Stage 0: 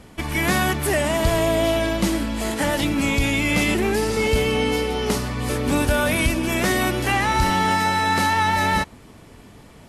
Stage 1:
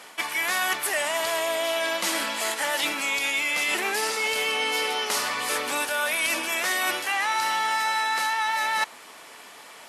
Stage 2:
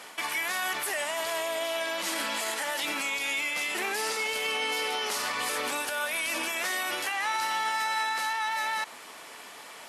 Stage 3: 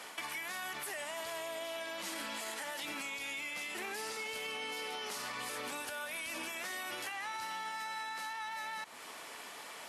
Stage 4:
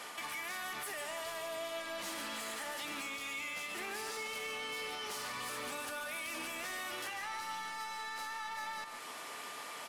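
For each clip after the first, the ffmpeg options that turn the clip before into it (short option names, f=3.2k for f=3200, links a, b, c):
-af "highpass=870,areverse,acompressor=threshold=-31dB:ratio=6,areverse,volume=8dB"
-af "alimiter=limit=-21.5dB:level=0:latency=1:release=44"
-filter_complex "[0:a]acrossover=split=220[a][b];[b]acompressor=threshold=-37dB:ratio=4[c];[a][c]amix=inputs=2:normalize=0,volume=-2.5dB"
-af "asoftclip=type=tanh:threshold=-39dB,aeval=exprs='val(0)+0.00178*sin(2*PI*1200*n/s)':c=same,aecho=1:1:145:0.376,volume=2dB"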